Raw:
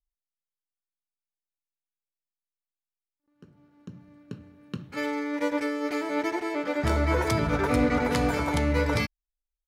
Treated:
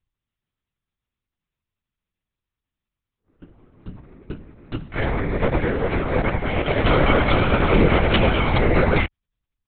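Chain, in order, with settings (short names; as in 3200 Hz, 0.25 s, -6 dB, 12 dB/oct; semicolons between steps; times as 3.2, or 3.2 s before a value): 6.47–8.56 bell 3000 Hz +9.5 dB 0.52 oct; LPC vocoder at 8 kHz whisper; gain +7.5 dB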